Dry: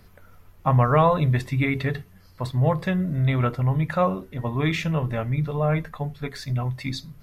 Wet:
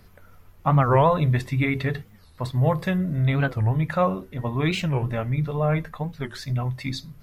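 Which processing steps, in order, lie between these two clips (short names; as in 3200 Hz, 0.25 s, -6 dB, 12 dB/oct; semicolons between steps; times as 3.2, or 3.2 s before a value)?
2.55–2.98 high shelf 8700 Hz +7.5 dB; record warp 45 rpm, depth 250 cents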